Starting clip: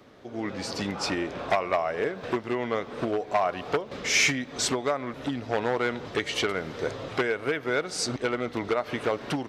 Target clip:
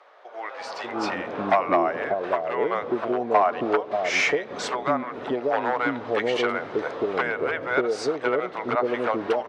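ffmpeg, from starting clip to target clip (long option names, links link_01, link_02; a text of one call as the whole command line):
ffmpeg -i in.wav -filter_complex "[0:a]bandpass=frequency=740:width_type=q:width=0.8:csg=0,acrossover=split=580[link_01][link_02];[link_01]adelay=590[link_03];[link_03][link_02]amix=inputs=2:normalize=0,volume=8.5dB" out.wav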